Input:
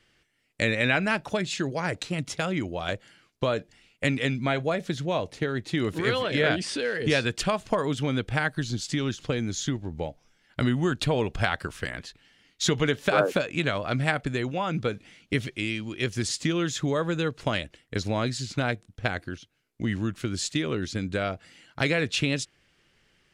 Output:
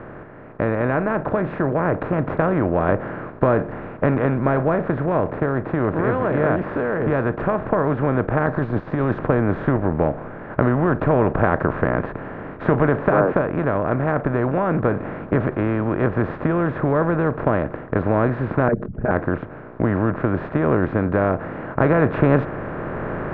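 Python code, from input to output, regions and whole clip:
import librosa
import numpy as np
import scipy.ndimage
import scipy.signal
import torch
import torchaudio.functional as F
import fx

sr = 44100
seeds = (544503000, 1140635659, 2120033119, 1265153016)

y = fx.chain(x, sr, fx.band_shelf(hz=5600.0, db=16.0, octaves=1.3),
    fx.notch(hz=1400.0, q=11.0),
    fx.over_compress(threshold_db=-29.0, ratio=-1.0), at=(8.46, 9.19))
y = fx.chain(y, sr, fx.envelope_sharpen(power=3.0),
    fx.comb(ms=4.8, depth=0.98),
    fx.over_compress(threshold_db=-27.0, ratio=-0.5), at=(18.68, 19.11))
y = fx.bin_compress(y, sr, power=0.4)
y = scipy.signal.sosfilt(scipy.signal.butter(4, 1400.0, 'lowpass', fs=sr, output='sos'), y)
y = fx.rider(y, sr, range_db=10, speed_s=2.0)
y = y * librosa.db_to_amplitude(1.5)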